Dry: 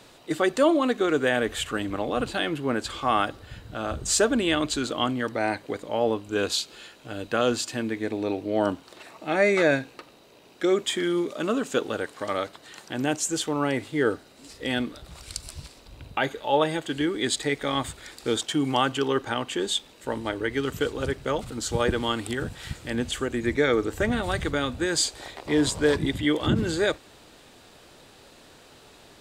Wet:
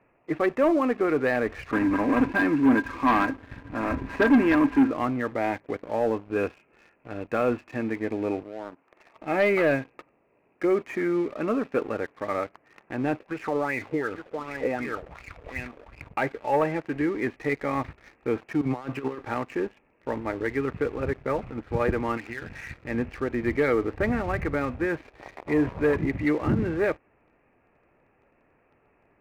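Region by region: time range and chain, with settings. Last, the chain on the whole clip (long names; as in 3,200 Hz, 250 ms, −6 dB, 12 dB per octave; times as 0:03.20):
0:01.72–0:04.91: one scale factor per block 3 bits + hollow resonant body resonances 270/990/1,600 Hz, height 17 dB, ringing for 90 ms
0:08.43–0:09.16: high-pass filter 410 Hz 6 dB per octave + downward compressor 2 to 1, threshold −40 dBFS
0:13.20–0:16.09: single-tap delay 856 ms −13 dB + downward compressor 10 to 1, threshold −27 dBFS + auto-filter bell 2.7 Hz 450–2,500 Hz +16 dB
0:18.61–0:19.19: compressor whose output falls as the input rises −28 dBFS, ratio −0.5 + multiband upward and downward expander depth 70%
0:22.17–0:22.74: flat-topped bell 2,100 Hz +10.5 dB 1.2 octaves + mains-hum notches 50/100/150/200/250 Hz + downward compressor 3 to 1, threshold −33 dBFS
whole clip: Butterworth low-pass 2,600 Hz 96 dB per octave; notch filter 1,500 Hz, Q 14; leveller curve on the samples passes 2; level −7.5 dB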